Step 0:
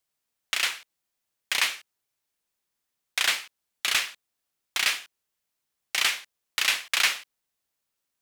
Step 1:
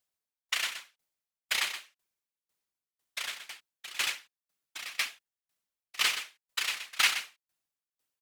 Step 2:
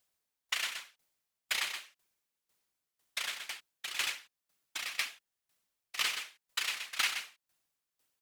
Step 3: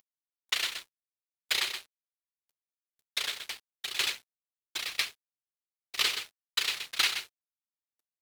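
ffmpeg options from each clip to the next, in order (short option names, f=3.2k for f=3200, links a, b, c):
-filter_complex "[0:a]afftfilt=real='hypot(re,im)*cos(2*PI*random(0))':imag='hypot(re,im)*sin(2*PI*random(1))':win_size=512:overlap=0.75,asplit=2[a][b];[b]aecho=0:1:124:0.631[c];[a][c]amix=inputs=2:normalize=0,aeval=exprs='val(0)*pow(10,-23*if(lt(mod(2*n/s,1),2*abs(2)/1000),1-mod(2*n/s,1)/(2*abs(2)/1000),(mod(2*n/s,1)-2*abs(2)/1000)/(1-2*abs(2)/1000))/20)':c=same,volume=5.5dB"
-af "acompressor=threshold=-43dB:ratio=2,volume=5.5dB"
-af "equalizer=f=100:t=o:w=0.67:g=11,equalizer=f=400:t=o:w=0.67:g=11,equalizer=f=4k:t=o:w=0.67:g=7,equalizer=f=16k:t=o:w=0.67:g=3,acompressor=mode=upward:threshold=-42dB:ratio=2.5,aeval=exprs='sgn(val(0))*max(abs(val(0))-0.00447,0)':c=same,volume=2dB"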